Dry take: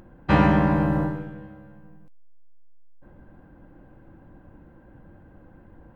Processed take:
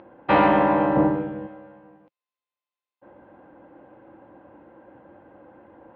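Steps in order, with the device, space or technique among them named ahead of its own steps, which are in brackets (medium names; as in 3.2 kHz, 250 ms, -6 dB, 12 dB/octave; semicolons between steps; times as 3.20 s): 0.96–1.47 s: bass shelf 370 Hz +11 dB; overdrive pedal into a guitar cabinet (overdrive pedal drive 15 dB, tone 3.1 kHz, clips at -5.5 dBFS; cabinet simulation 98–3700 Hz, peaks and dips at 160 Hz -7 dB, 320 Hz +4 dB, 540 Hz +6 dB, 860 Hz +4 dB, 1.6 kHz -4 dB); trim -3 dB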